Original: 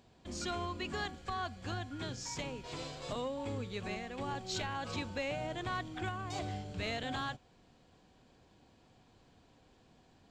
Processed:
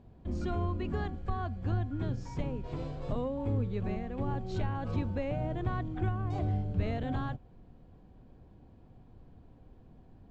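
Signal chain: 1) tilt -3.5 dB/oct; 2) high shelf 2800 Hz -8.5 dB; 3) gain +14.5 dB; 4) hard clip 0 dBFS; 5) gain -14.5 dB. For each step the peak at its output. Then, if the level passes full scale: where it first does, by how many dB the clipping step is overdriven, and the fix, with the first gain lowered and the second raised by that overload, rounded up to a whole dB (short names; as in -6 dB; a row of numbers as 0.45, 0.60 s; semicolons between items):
-18.5, -18.5, -4.0, -4.0, -18.5 dBFS; no overload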